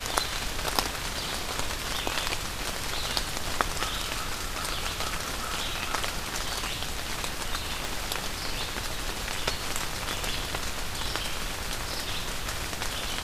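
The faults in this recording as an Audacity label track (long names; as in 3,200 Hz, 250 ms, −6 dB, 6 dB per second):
7.850000	7.850000	click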